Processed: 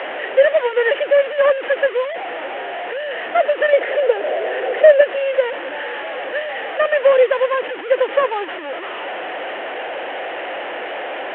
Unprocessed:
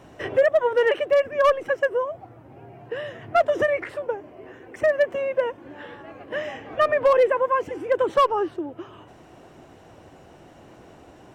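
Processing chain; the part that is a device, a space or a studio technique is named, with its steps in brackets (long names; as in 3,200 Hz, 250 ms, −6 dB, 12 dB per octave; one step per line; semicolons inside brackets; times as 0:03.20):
digital answering machine (band-pass filter 380–3,300 Hz; linear delta modulator 16 kbit/s, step −24 dBFS; loudspeaker in its box 420–3,500 Hz, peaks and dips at 530 Hz +7 dB, 760 Hz +3 dB, 1,100 Hz −4 dB, 1,800 Hz +6 dB, 3,000 Hz +6 dB)
0:03.73–0:05.01: flat-topped bell 540 Hz +8 dB 1.1 octaves
level +1.5 dB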